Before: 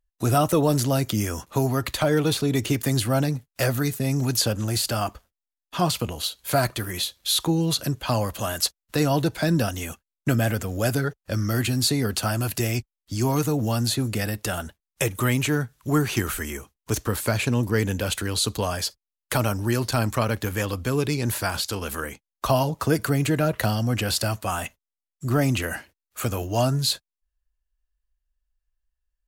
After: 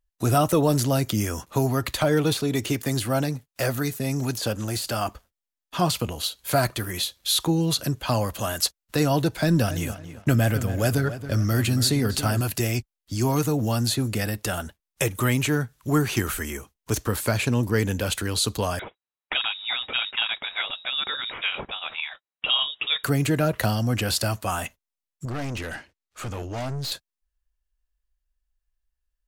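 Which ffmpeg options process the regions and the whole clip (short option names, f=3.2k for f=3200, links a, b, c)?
-filter_complex "[0:a]asettb=1/sr,asplit=3[a][b][c];[a]atrim=end=2.334[d];[b]atrim=start=2.33:end=5.06,asetpts=PTS-STARTPTS,afade=t=in:d=0.004:c=qsin,afade=t=out:st=2.726:d=0.004:c=qsin,deesser=0.45,lowshelf=f=180:g=-5.5[e];[c]atrim=start=5.056[f];[d][e]acrossfade=d=0.004:c1=hsin:c2=qsin[g];[g][f]acrossfade=d=0.004:c1=qsin:c2=hsin,asettb=1/sr,asplit=3[h][i][j];[h]atrim=end=9.384[k];[i]atrim=start=9.38:end=12.41,asetpts=PTS-STARTPTS,afade=t=in:d=0.004:c=qsin,afade=t=out:st=3.026:d=0.004:c=qsin,lowshelf=f=82:g=8.5,asplit=2[l][m];[m]adelay=276,lowpass=f=3.3k:p=1,volume=-11.5dB,asplit=2[n][o];[o]adelay=276,lowpass=f=3.3k:p=1,volume=0.33,asplit=2[p][q];[q]adelay=276,lowpass=f=3.3k:p=1,volume=0.33[r];[l][n][p][r]amix=inputs=4:normalize=0,atrim=end_sample=133623,aeval=exprs='sgn(val(0))*max(abs(val(0))-0.00335,0)':c=same[s];[j]atrim=start=12.406[t];[k][s]acrossfade=d=0.004:c1=hsin:c2=qsin[u];[u][t]acrossfade=d=0.004:c1=qsin:c2=hsin,asettb=1/sr,asplit=3[v][w][x];[v]atrim=end=18.794[y];[w]atrim=start=18.79:end=23.04,asetpts=PTS-STARTPTS,afade=t=in:d=0.004:c=qsin,afade=t=out:st=4.246:d=0.004:c=qsin,aemphasis=mode=production:type=riaa,asoftclip=type=hard:threshold=-0.5dB,lowpass=f=3.3k:t=q:w=0.5098,lowpass=f=3.3k:t=q:w=0.6013,lowpass=f=3.3k:t=q:w=0.9,lowpass=f=3.3k:t=q:w=2.563,afreqshift=-3900[z];[x]atrim=start=23.036[aa];[y][z]acrossfade=d=0.004:c1=hsin:c2=qsin[ab];[ab][aa]acrossfade=d=0.004:c1=qsin:c2=hsin,asettb=1/sr,asplit=3[ac][ad][ae];[ac]atrim=end=25.254[af];[ad]atrim=start=25.25:end=26.92,asetpts=PTS-STARTPTS,afade=t=in:d=0.004:c=qsin,afade=t=out:st=1.666:d=0.004:c=qsin,lowpass=6.7k,aeval=exprs='(tanh(25.1*val(0)+0.3)-tanh(0.3))/25.1':c=same[ag];[ae]atrim=start=26.916[ah];[af][ag]acrossfade=d=0.004:c1=hsin:c2=qsin[ai];[ai][ah]acrossfade=d=0.004:c1=qsin:c2=hsin"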